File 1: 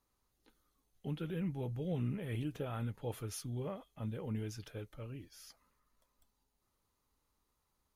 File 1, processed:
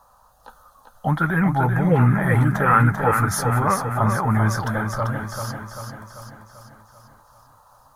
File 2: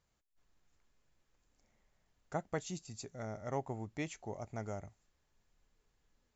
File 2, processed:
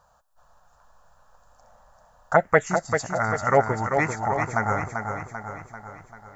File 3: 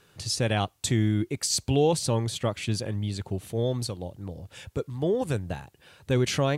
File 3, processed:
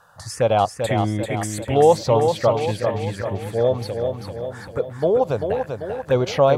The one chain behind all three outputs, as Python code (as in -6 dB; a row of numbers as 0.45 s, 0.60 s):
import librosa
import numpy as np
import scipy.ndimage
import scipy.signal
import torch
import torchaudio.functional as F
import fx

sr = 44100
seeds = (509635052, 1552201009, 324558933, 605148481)

p1 = fx.band_shelf(x, sr, hz=1000.0, db=14.0, octaves=2.4)
p2 = fx.env_phaser(p1, sr, low_hz=360.0, high_hz=1800.0, full_db=-17.5)
p3 = p2 + fx.echo_feedback(p2, sr, ms=391, feedback_pct=54, wet_db=-6.0, dry=0)
y = librosa.util.normalize(p3) * 10.0 ** (-3 / 20.0)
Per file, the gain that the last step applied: +19.5 dB, +13.5 dB, +0.5 dB